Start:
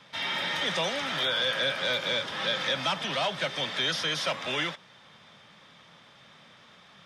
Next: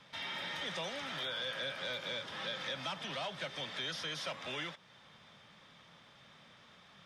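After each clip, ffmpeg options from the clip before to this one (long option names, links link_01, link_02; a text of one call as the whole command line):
ffmpeg -i in.wav -af "lowshelf=frequency=69:gain=8.5,acompressor=threshold=-41dB:ratio=1.5,volume=-5.5dB" out.wav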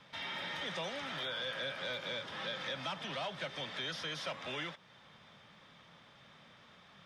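ffmpeg -i in.wav -af "highshelf=frequency=4600:gain=-5.5,volume=1dB" out.wav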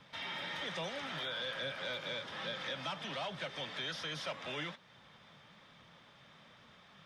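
ffmpeg -i in.wav -af "flanger=delay=0.1:depth=6.8:regen=80:speed=1.2:shape=sinusoidal,volume=4dB" out.wav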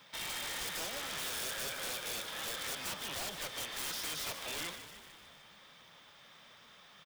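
ffmpeg -i in.wav -filter_complex "[0:a]aemphasis=mode=production:type=bsi,aeval=exprs='(mod(47.3*val(0)+1,2)-1)/47.3':channel_layout=same,asplit=8[link_01][link_02][link_03][link_04][link_05][link_06][link_07][link_08];[link_02]adelay=150,afreqshift=-63,volume=-10.5dB[link_09];[link_03]adelay=300,afreqshift=-126,volume=-14.9dB[link_10];[link_04]adelay=450,afreqshift=-189,volume=-19.4dB[link_11];[link_05]adelay=600,afreqshift=-252,volume=-23.8dB[link_12];[link_06]adelay=750,afreqshift=-315,volume=-28.2dB[link_13];[link_07]adelay=900,afreqshift=-378,volume=-32.7dB[link_14];[link_08]adelay=1050,afreqshift=-441,volume=-37.1dB[link_15];[link_01][link_09][link_10][link_11][link_12][link_13][link_14][link_15]amix=inputs=8:normalize=0" out.wav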